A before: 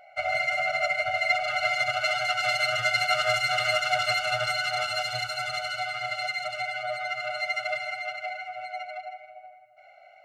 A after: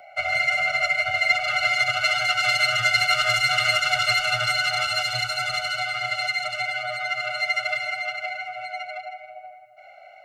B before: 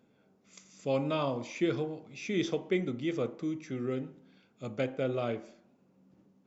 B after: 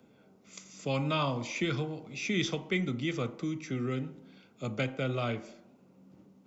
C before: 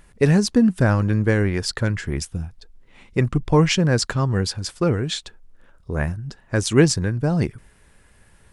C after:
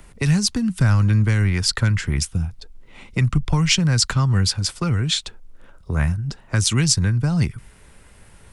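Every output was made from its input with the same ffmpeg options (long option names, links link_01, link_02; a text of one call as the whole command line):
ffmpeg -i in.wav -filter_complex "[0:a]acrossover=split=120|3000[link_01][link_02][link_03];[link_02]acompressor=threshold=-21dB:ratio=4[link_04];[link_01][link_04][link_03]amix=inputs=3:normalize=0,bandreject=frequency=1700:width=11,acrossover=split=220|900|5100[link_05][link_06][link_07][link_08];[link_06]acompressor=threshold=-44dB:ratio=6[link_09];[link_05][link_09][link_07][link_08]amix=inputs=4:normalize=0,volume=6dB" out.wav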